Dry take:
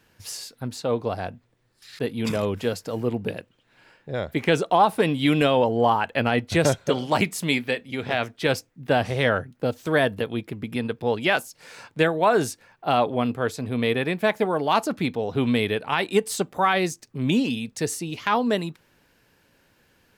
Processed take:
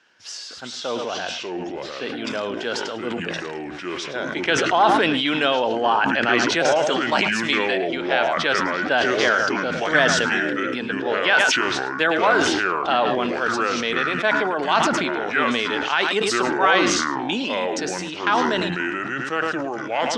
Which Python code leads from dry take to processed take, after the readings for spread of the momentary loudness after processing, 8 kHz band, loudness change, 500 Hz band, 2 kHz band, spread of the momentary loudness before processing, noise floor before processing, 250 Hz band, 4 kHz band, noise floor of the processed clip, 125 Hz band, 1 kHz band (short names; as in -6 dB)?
11 LU, +5.5 dB, +3.0 dB, +1.5 dB, +8.5 dB, 11 LU, -65 dBFS, +0.5 dB, +7.5 dB, -33 dBFS, -7.5 dB, +4.0 dB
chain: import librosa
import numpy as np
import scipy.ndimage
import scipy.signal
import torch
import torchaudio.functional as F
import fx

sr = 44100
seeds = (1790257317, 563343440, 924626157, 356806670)

y = fx.echo_pitch(x, sr, ms=308, semitones=-5, count=2, db_per_echo=-3.0)
y = fx.cabinet(y, sr, low_hz=350.0, low_slope=12, high_hz=6700.0, hz=(470.0, 1500.0, 3100.0, 5600.0), db=(-4, 8, 5, 4))
y = y + 10.0 ** (-14.0 / 20.0) * np.pad(y, (int(107 * sr / 1000.0), 0))[:len(y)]
y = fx.sustainer(y, sr, db_per_s=23.0)